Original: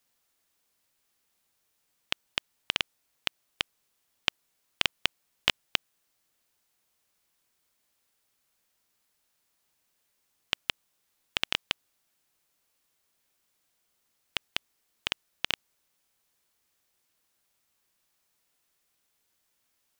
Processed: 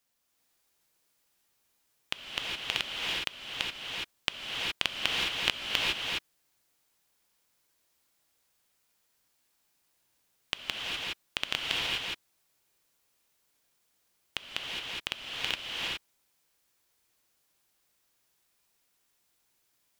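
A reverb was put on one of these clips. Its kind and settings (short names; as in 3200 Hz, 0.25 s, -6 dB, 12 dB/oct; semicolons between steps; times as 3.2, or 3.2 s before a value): non-linear reverb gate 0.44 s rising, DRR -3.5 dB; gain -3.5 dB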